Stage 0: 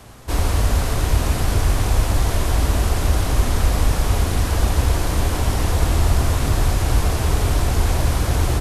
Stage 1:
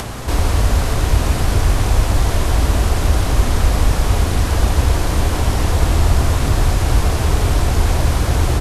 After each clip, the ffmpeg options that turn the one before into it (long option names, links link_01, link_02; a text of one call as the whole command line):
ffmpeg -i in.wav -af "acompressor=mode=upward:threshold=-18dB:ratio=2.5,highshelf=frequency=12000:gain=-6.5,volume=3dB" out.wav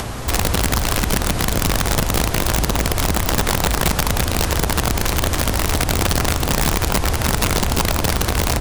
ffmpeg -i in.wav -af "alimiter=limit=-10dB:level=0:latency=1:release=121,aeval=exprs='(mod(3.98*val(0)+1,2)-1)/3.98':channel_layout=same" out.wav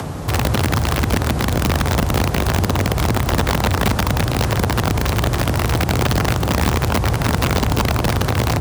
ffmpeg -i in.wav -filter_complex "[0:a]asplit=2[link_01][link_02];[link_02]adynamicsmooth=sensitivity=1.5:basefreq=720,volume=1.5dB[link_03];[link_01][link_03]amix=inputs=2:normalize=0,afreqshift=39,volume=-5.5dB" out.wav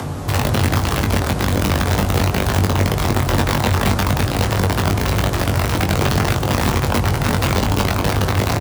ffmpeg -i in.wav -filter_complex "[0:a]flanger=delay=8.1:depth=3:regen=-67:speed=0.3:shape=sinusoidal,asplit=2[link_01][link_02];[link_02]adelay=21,volume=-5dB[link_03];[link_01][link_03]amix=inputs=2:normalize=0,volume=3.5dB" out.wav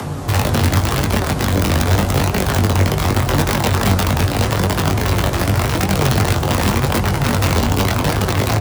ffmpeg -i in.wav -filter_complex "[0:a]flanger=delay=4.6:depth=8.6:regen=64:speed=0.85:shape=triangular,acrossover=split=210|600|6700[link_01][link_02][link_03][link_04];[link_03]aeval=exprs='(mod(5.96*val(0)+1,2)-1)/5.96':channel_layout=same[link_05];[link_01][link_02][link_05][link_04]amix=inputs=4:normalize=0,volume=5.5dB" out.wav